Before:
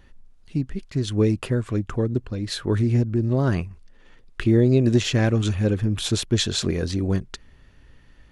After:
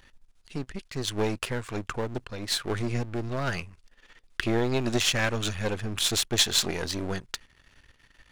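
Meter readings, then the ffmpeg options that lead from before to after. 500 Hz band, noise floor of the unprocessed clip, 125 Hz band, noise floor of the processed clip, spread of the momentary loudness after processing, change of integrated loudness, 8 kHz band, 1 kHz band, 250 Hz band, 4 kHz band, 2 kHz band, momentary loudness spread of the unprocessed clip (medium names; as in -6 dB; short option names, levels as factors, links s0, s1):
-6.0 dB, -52 dBFS, -12.0 dB, -63 dBFS, 14 LU, -5.5 dB, +3.0 dB, +2.0 dB, -10.0 dB, +2.0 dB, +2.5 dB, 10 LU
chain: -af "aeval=exprs='if(lt(val(0),0),0.251*val(0),val(0))':c=same,tiltshelf=f=730:g=-6.5"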